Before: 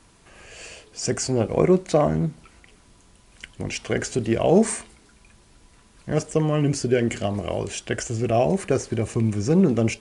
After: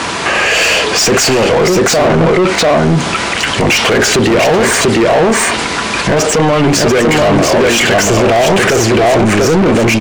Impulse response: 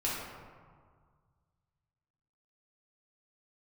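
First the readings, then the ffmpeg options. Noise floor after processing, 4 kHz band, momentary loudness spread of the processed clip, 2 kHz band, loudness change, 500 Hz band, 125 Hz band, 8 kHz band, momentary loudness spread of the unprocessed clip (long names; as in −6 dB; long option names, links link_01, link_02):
−17 dBFS, +23.5 dB, 4 LU, +23.5 dB, +13.0 dB, +13.5 dB, +9.5 dB, +17.5 dB, 12 LU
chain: -filter_complex "[0:a]lowpass=7800,acompressor=threshold=-28dB:ratio=2,highpass=frequency=45:width=0.5412,highpass=frequency=45:width=1.3066,asplit=2[link_01][link_02];[link_02]aecho=0:1:691:0.631[link_03];[link_01][link_03]amix=inputs=2:normalize=0,asplit=2[link_04][link_05];[link_05]highpass=frequency=720:poles=1,volume=31dB,asoftclip=type=tanh:threshold=-13.5dB[link_06];[link_04][link_06]amix=inputs=2:normalize=0,lowpass=frequency=3000:poles=1,volume=-6dB,alimiter=level_in=24dB:limit=-1dB:release=50:level=0:latency=1,volume=-4dB"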